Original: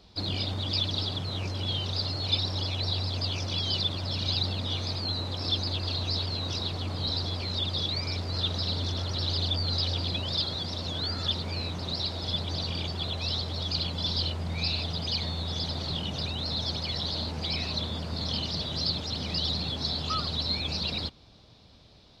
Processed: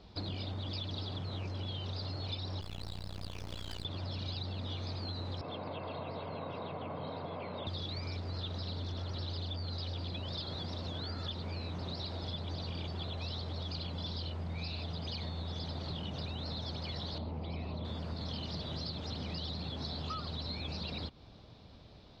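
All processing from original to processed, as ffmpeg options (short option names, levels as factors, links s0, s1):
-filter_complex "[0:a]asettb=1/sr,asplit=3[s0][s1][s2];[s0]atrim=end=2.614[s3];[s1]atrim=start=2.61:end=3.85,asetpts=PTS-STARTPTS,afade=t=in:d=0.004:c=qsin,afade=t=out:st=1.236:d=0.004:c=qsin,acrusher=bits=4:dc=4:mix=0:aa=0.000001,tremolo=f=58:d=0.889[s4];[s2]atrim=start=3.846[s5];[s3][s4]acrossfade=d=0.004:c1=hsin:c2=qsin[s6];[s6][s5]acrossfade=d=0.004:c1=qsin:c2=hsin,asettb=1/sr,asplit=3[s7][s8][s9];[s7]atrim=end=5.414[s10];[s8]atrim=start=5.41:end=7.67,asetpts=PTS-STARTPTS,afade=t=in:d=0.004:c=qsin,afade=t=out:st=2.256:d=0.004:c=qsin,highpass=f=150:w=0.5412,highpass=f=150:w=1.3066,equalizer=f=200:t=q:w=4:g=-5,equalizer=f=360:t=q:w=4:g=-7,equalizer=f=760:t=q:w=4:g=4,equalizer=f=1700:t=q:w=4:g=-8,lowpass=f=2400:w=0.5412,lowpass=f=2400:w=1.3066,aecho=1:1:1.9:0.33,atrim=end_sample=99666[s11];[s9]atrim=start=7.666[s12];[s10][s11]acrossfade=d=0.004:c1=hsin:c2=qsin[s13];[s13][s12]acrossfade=d=0.004:c1=qsin:c2=hsin,asettb=1/sr,asplit=3[s14][s15][s16];[s14]atrim=end=17.184[s17];[s15]atrim=start=17.18:end=17.85,asetpts=PTS-STARTPTS,afade=t=in:d=0.004:c=qsin,afade=t=out:st=0.666:d=0.004:c=qsin,lowpass=2100,equalizer=f=1600:t=o:w=0.57:g=-10.5[s18];[s16]atrim=start=17.846[s19];[s17][s18]acrossfade=d=0.004:c1=hsin:c2=qsin[s20];[s20][s19]acrossfade=d=0.004:c1=qsin:c2=hsin,lowpass=f=2100:p=1,acompressor=threshold=0.0126:ratio=6,volume=1.19"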